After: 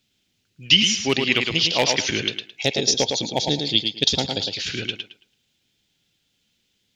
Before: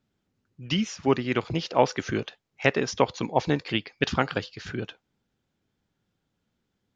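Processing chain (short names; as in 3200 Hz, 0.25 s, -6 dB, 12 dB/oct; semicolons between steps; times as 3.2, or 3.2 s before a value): spectral gain 2.62–4.48, 930–3200 Hz -15 dB; hard clip -10 dBFS, distortion -23 dB; resonant high shelf 1900 Hz +14 dB, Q 1.5; on a send: tape echo 0.109 s, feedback 25%, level -4 dB, low-pass 5000 Hz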